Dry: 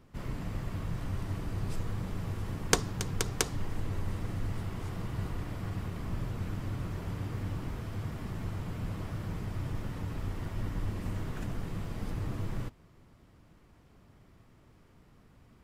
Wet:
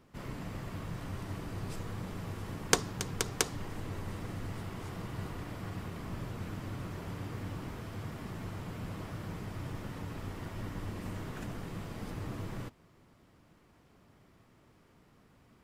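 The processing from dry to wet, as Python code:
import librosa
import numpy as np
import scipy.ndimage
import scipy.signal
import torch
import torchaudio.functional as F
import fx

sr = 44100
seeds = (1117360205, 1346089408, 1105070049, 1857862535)

y = fx.low_shelf(x, sr, hz=98.0, db=-11.0)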